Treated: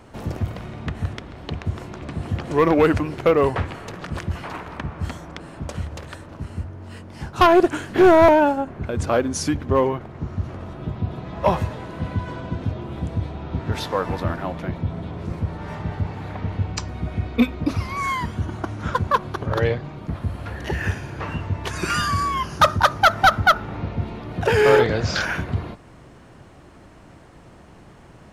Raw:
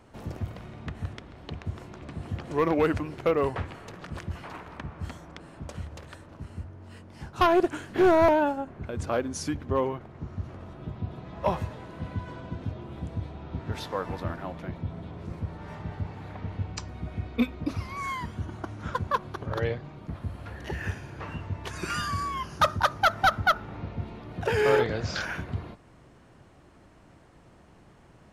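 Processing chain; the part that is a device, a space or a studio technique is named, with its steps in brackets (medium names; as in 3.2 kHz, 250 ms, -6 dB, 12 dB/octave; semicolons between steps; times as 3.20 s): parallel distortion (in parallel at -11.5 dB: hard clipper -26.5 dBFS, distortion -6 dB); on the sum: trim +6.5 dB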